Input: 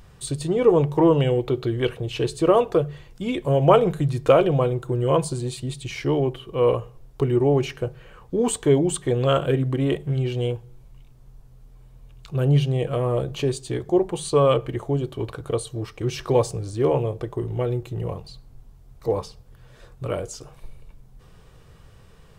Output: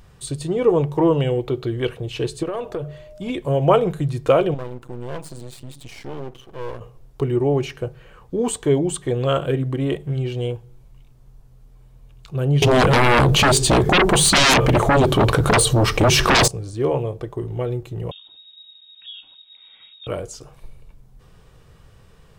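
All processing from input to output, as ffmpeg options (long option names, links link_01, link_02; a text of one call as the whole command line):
ffmpeg -i in.wav -filter_complex "[0:a]asettb=1/sr,asplit=3[link_01][link_02][link_03];[link_01]atrim=end=2.434[link_04];[link_02]atrim=start=2.43:end=3.3,asetpts=PTS-STARTPTS,afade=type=in:duration=0.004:curve=qsin,afade=type=out:start_time=0.866:duration=0.004:curve=qsin,aeval=exprs='val(0)+0.01*sin(2*PI*610*n/s)':channel_layout=same,acompressor=threshold=-20dB:ratio=10:attack=3.2:release=140:knee=1:detection=peak,aeval=exprs='(tanh(7.08*val(0)+0.3)-tanh(0.3))/7.08':channel_layout=same[link_05];[link_03]atrim=start=3.296[link_06];[link_04][link_05]acrossfade=duration=0.004:curve1=hsin:curve2=qsin[link_07];[link_07][link_06]acrossfade=duration=0.004:curve1=qsin:curve2=hsin,asettb=1/sr,asplit=3[link_08][link_09][link_10];[link_08]atrim=end=4.544[link_11];[link_09]atrim=start=4.54:end=6.81,asetpts=PTS-STARTPTS,afade=type=in:duration=0.004:curve=qsin,afade=type=out:start_time=2.266:duration=0.004:curve=qsin,acompressor=threshold=-36dB:ratio=1.5:attack=3.2:release=140:knee=1:detection=peak,aeval=exprs='max(val(0),0)':channel_layout=same[link_12];[link_10]atrim=start=6.806[link_13];[link_11][link_12]acrossfade=duration=0.004:curve1=hsin:curve2=qsin[link_14];[link_14][link_13]acrossfade=duration=0.004:curve1=qsin:curve2=hsin,asettb=1/sr,asplit=3[link_15][link_16][link_17];[link_15]atrim=end=12.624[link_18];[link_16]atrim=start=12.62:end=16.48,asetpts=PTS-STARTPTS,afade=type=in:duration=0.004:curve=qsin,afade=type=out:start_time=3.856:duration=0.004:curve=qsin,aeval=exprs='0.473*sin(PI/2*8.91*val(0)/0.473)':channel_layout=same,acompressor=threshold=-14dB:ratio=2.5:attack=3.2:release=140:knee=1:detection=peak[link_19];[link_17]atrim=start=16.476[link_20];[link_18][link_19]acrossfade=duration=0.004:curve1=hsin:curve2=qsin[link_21];[link_21][link_20]acrossfade=duration=0.004:curve1=qsin:curve2=hsin,asettb=1/sr,asplit=3[link_22][link_23][link_24];[link_22]atrim=end=18.114[link_25];[link_23]atrim=start=18.11:end=20.07,asetpts=PTS-STARTPTS,afade=type=in:duration=0.004:curve=qsin,afade=type=out:start_time=1.956:duration=0.004:curve=qsin,acompressor=threshold=-42dB:ratio=2.5:attack=3.2:release=140:knee=1:detection=peak,lowpass=frequency=3200:width_type=q:width=0.5098,lowpass=frequency=3200:width_type=q:width=0.6013,lowpass=frequency=3200:width_type=q:width=0.9,lowpass=frequency=3200:width_type=q:width=2.563,afreqshift=-3800[link_26];[link_24]atrim=start=20.066[link_27];[link_25][link_26]acrossfade=duration=0.004:curve1=hsin:curve2=qsin[link_28];[link_28][link_27]acrossfade=duration=0.004:curve1=qsin:curve2=hsin" out.wav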